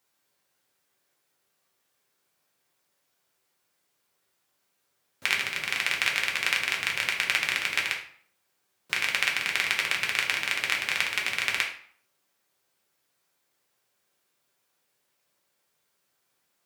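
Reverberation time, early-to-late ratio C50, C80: 0.55 s, 7.5 dB, 12.0 dB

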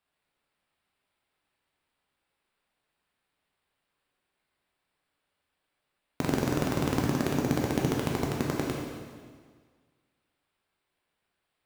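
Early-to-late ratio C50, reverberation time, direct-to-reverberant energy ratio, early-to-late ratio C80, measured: 0.5 dB, 1.7 s, −2.0 dB, 2.5 dB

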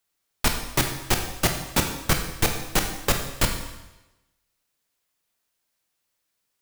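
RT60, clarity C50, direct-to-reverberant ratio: 1.0 s, 6.5 dB, 4.0 dB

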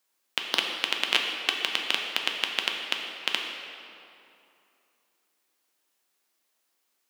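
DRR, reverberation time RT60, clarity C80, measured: 1.0 dB, 2.7 s, 4.0 dB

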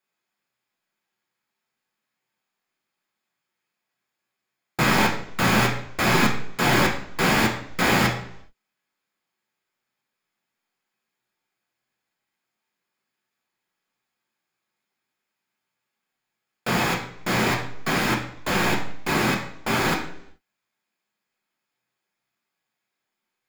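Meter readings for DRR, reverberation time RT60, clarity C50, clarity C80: −1.0 dB, 0.70 s, 7.5 dB, 10.5 dB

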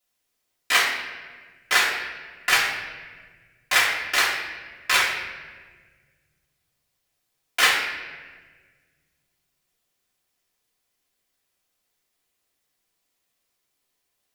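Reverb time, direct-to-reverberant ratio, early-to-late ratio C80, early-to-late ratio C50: 1.5 s, −11.0 dB, 5.5 dB, 3.0 dB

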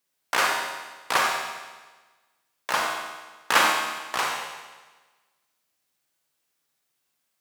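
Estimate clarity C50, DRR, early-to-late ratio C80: 1.0 dB, −0.5 dB, 3.5 dB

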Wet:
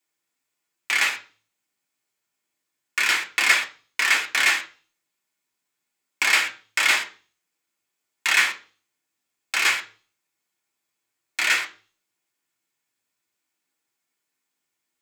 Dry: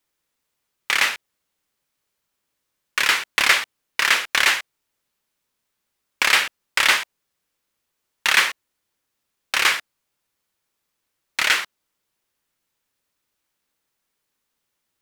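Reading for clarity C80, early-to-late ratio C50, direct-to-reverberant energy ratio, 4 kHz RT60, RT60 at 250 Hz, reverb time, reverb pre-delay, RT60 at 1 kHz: 19.5 dB, 14.5 dB, −0.5 dB, 0.40 s, 0.45 s, 0.40 s, 3 ms, 0.35 s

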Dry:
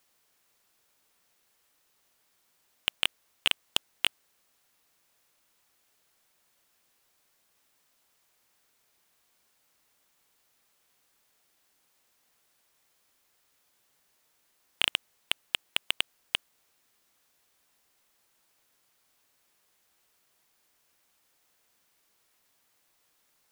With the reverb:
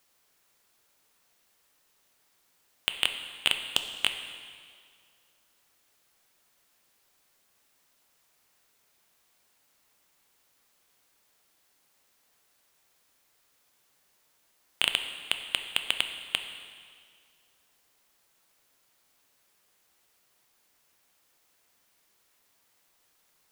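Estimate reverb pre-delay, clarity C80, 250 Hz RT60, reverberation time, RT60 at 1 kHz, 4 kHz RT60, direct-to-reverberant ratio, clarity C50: 5 ms, 9.5 dB, 1.9 s, 2.0 s, 2.0 s, 1.9 s, 6.5 dB, 8.0 dB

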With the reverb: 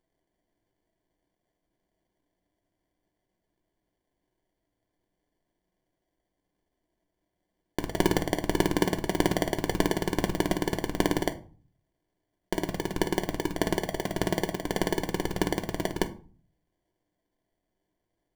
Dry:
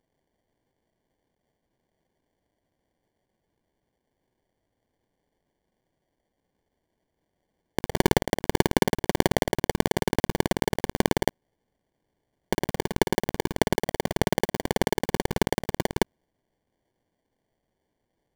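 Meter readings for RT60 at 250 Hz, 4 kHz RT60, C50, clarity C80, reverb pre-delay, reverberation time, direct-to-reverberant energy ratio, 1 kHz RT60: 0.60 s, 0.30 s, 16.5 dB, 21.0 dB, 3 ms, 0.40 s, 4.5 dB, 0.40 s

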